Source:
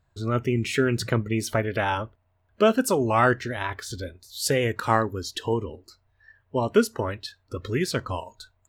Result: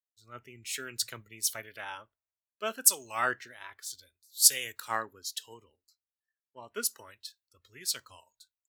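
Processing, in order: pre-emphasis filter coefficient 0.97; three bands expanded up and down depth 100%

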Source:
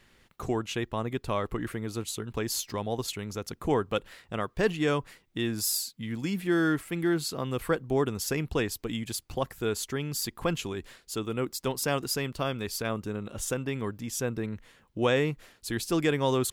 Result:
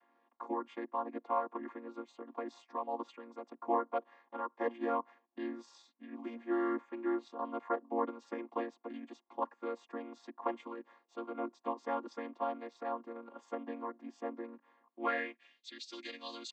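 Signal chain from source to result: vocoder on a held chord minor triad, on A#3; band-pass sweep 950 Hz -> 4.2 kHz, 14.82–15.78 s; trim +5.5 dB

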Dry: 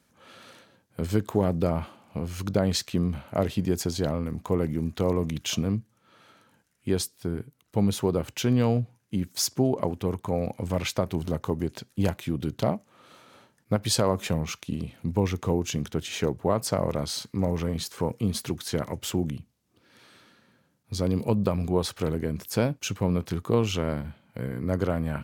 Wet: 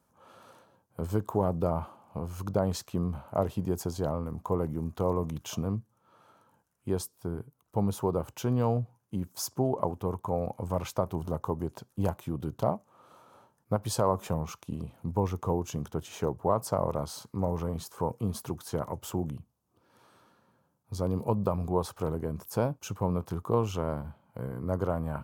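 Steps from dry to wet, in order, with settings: graphic EQ 250/1000/2000/4000/8000 Hz -4/+8/-11/-8/-3 dB; trim -3 dB

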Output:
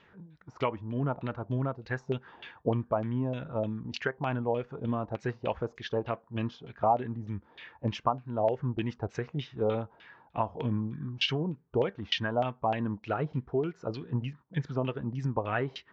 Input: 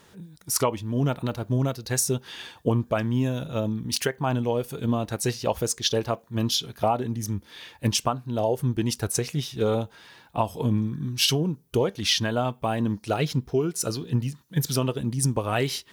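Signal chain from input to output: LFO low-pass saw down 3.3 Hz 650–2900 Hz; resampled via 16 kHz; trim -7 dB

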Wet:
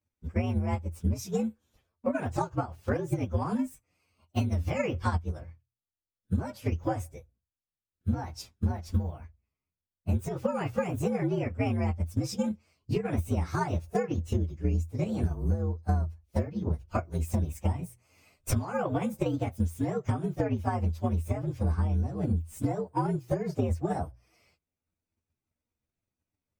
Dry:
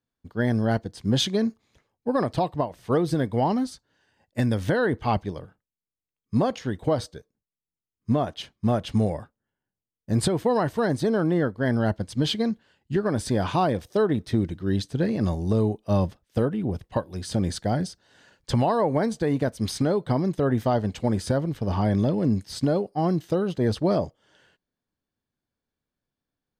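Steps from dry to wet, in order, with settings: frequency axis rescaled in octaves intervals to 120%; peaking EQ 82 Hz +13 dB 0.35 oct; hum notches 60/120 Hz; transient shaper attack +8 dB, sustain -2 dB; compression 6:1, threshold -25 dBFS, peak gain reduction 17.5 dB

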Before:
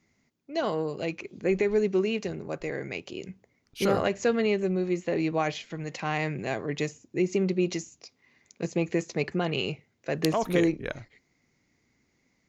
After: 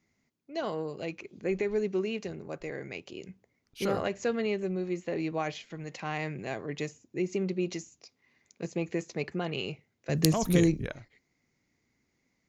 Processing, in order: 10.09–10.86 s: tone controls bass +14 dB, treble +14 dB; trim -5 dB

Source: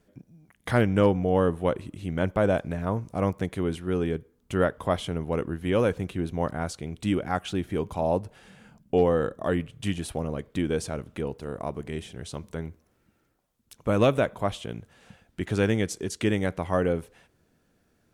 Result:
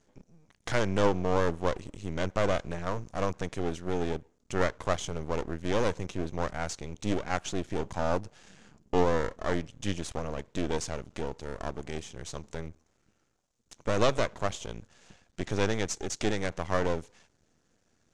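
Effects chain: half-wave rectifier; resonant low-pass 6.7 kHz, resonance Q 3.1

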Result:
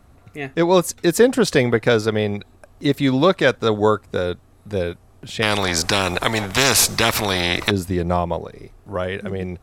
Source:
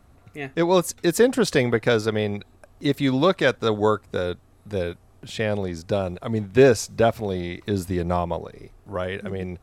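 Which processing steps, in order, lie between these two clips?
5.42–7.71 s: spectrum-flattening compressor 4:1; trim +3.5 dB

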